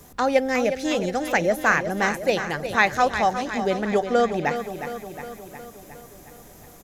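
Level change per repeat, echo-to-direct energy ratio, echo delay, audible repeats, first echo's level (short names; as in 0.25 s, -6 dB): -4.5 dB, -7.5 dB, 0.361 s, 6, -9.5 dB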